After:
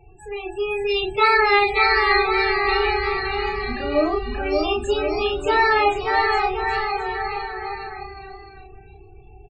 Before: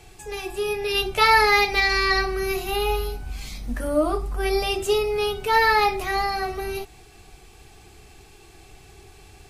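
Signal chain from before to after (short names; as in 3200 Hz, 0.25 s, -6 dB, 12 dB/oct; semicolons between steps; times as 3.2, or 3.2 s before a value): loudest bins only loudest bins 16; doubler 32 ms -4 dB; on a send: bouncing-ball echo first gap 0.58 s, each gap 0.85×, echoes 5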